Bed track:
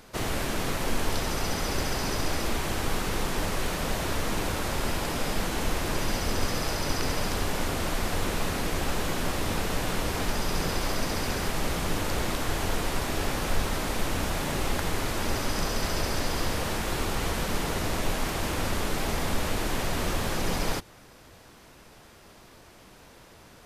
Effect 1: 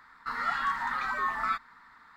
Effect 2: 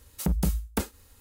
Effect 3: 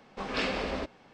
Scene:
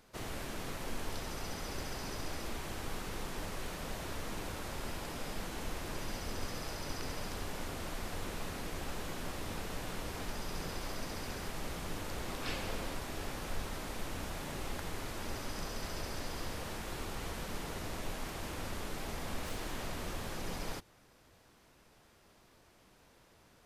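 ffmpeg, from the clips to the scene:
-filter_complex "[3:a]asplit=2[a][b];[0:a]volume=-12dB[c];[a]aemphasis=mode=production:type=50fm[d];[b]aeval=exprs='0.0188*(abs(mod(val(0)/0.0188+3,4)-2)-1)':c=same[e];[d]atrim=end=1.13,asetpts=PTS-STARTPTS,volume=-12.5dB,afade=t=in:d=0.004:c=hsin,afade=t=out:st=1.126:d=0.004:c=hsin,adelay=12090[f];[e]atrim=end=1.13,asetpts=PTS-STARTPTS,volume=-11dB,afade=t=in:d=0.004:c=hsin,afade=t=out:st=1.126:d=0.004:c=hsin,adelay=19090[g];[c][f][g]amix=inputs=3:normalize=0"

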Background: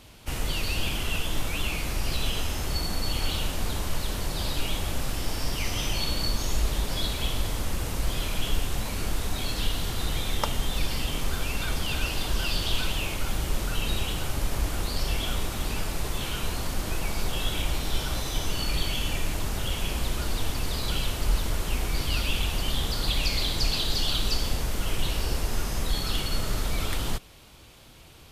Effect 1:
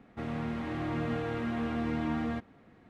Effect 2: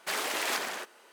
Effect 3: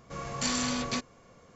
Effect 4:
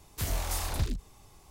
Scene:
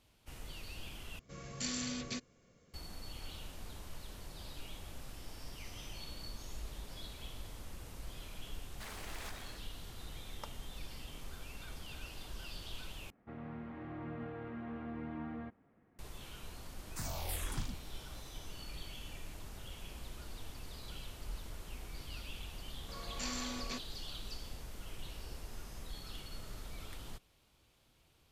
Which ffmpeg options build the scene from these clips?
-filter_complex "[3:a]asplit=2[a][b];[0:a]volume=-19dB[c];[a]equalizer=f=930:w=1.2:g=-11.5[d];[1:a]lowpass=2.1k[e];[4:a]asplit=2[f][g];[g]afreqshift=-1.7[h];[f][h]amix=inputs=2:normalize=1[i];[b]highpass=f=190:w=0.5412,highpass=f=190:w=1.3066[j];[c]asplit=3[k][l][m];[k]atrim=end=1.194[n];[d]atrim=end=1.55,asetpts=PTS-STARTPTS,volume=-7.5dB[o];[l]atrim=start=2.736:end=13.104[p];[e]atrim=end=2.89,asetpts=PTS-STARTPTS,volume=-11dB[q];[m]atrim=start=15.986[r];[2:a]atrim=end=1.12,asetpts=PTS-STARTPTS,volume=-17.5dB,afade=t=in:d=0.004:c=hsin,afade=t=out:st=1.116:d=0.004:c=hsin,adelay=8730[s];[i]atrim=end=1.5,asetpts=PTS-STARTPTS,volume=-4.5dB,afade=t=in:d=0.004:c=hsin,afade=t=out:st=1.496:d=0.004:c=hsin,adelay=16780[t];[j]atrim=end=1.55,asetpts=PTS-STARTPTS,volume=-11dB,afade=t=in:d=0.004:c=hsin,afade=t=out:st=1.546:d=0.004:c=hsin,adelay=22780[u];[n][o]acrossfade=d=0.004:c1=hsin:c2=hsin[v];[v][p]acrossfade=d=0.004:c1=hsin:c2=hsin[w];[w][q]acrossfade=d=0.004:c1=hsin:c2=hsin[x];[x][r]acrossfade=d=0.004:c1=hsin:c2=hsin[y];[y][s][t][u]amix=inputs=4:normalize=0"

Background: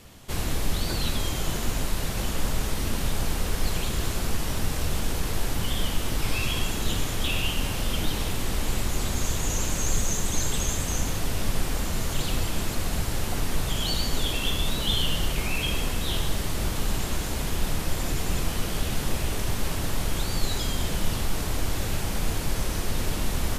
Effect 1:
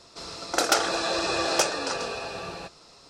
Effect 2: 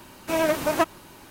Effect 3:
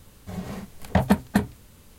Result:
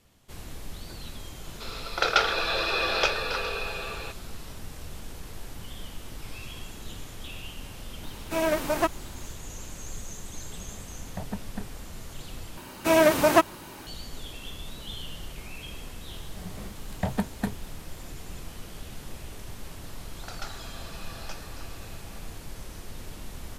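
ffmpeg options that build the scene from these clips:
-filter_complex "[1:a]asplit=2[a][b];[2:a]asplit=2[c][d];[3:a]asplit=2[e][f];[0:a]volume=-13.5dB[g];[a]highpass=f=410:w=0.5412,highpass=f=410:w=1.3066,equalizer=f=420:t=q:w=4:g=6,equalizer=f=710:t=q:w=4:g=-4,equalizer=f=1.4k:t=q:w=4:g=6,equalizer=f=2.4k:t=q:w=4:g=8,equalizer=f=3.5k:t=q:w=4:g=7,lowpass=f=4.8k:w=0.5412,lowpass=f=4.8k:w=1.3066[h];[e]aemphasis=mode=reproduction:type=75kf[i];[d]acontrast=62[j];[b]highpass=730,lowpass=4.9k[k];[g]asplit=2[l][m];[l]atrim=end=12.574[n];[j]atrim=end=1.3,asetpts=PTS-STARTPTS,volume=-2.5dB[o];[m]atrim=start=13.866[p];[h]atrim=end=3.09,asetpts=PTS-STARTPTS,volume=-2.5dB,afade=t=in:d=0.004:c=hsin,afade=t=out:st=3.086:d=0.004:c=hsin,adelay=1440[q];[c]atrim=end=1.3,asetpts=PTS-STARTPTS,volume=-3dB,afade=t=in:d=0.004:c=hsin,afade=t=out:st=1.296:d=0.004:c=hsin,adelay=8030[r];[i]atrim=end=1.98,asetpts=PTS-STARTPTS,volume=-16dB,afade=t=in:d=0.004:c=hsin,afade=t=out:st=1.976:d=0.004:c=hsin,adelay=10220[s];[f]atrim=end=1.98,asetpts=PTS-STARTPTS,volume=-8.5dB,afade=t=in:d=0.004:c=hsin,afade=t=out:st=1.976:d=0.004:c=hsin,adelay=16080[t];[k]atrim=end=3.09,asetpts=PTS-STARTPTS,volume=-16.5dB,afade=t=in:d=0.004:c=hsin,afade=t=out:st=3.086:d=0.004:c=hsin,adelay=19700[u];[n][o]acrossfade=d=0.004:c1=hsin:c2=hsin[v];[v][p]acrossfade=d=0.004:c1=hsin:c2=hsin[w];[w][q][r][s][t][u]amix=inputs=6:normalize=0"

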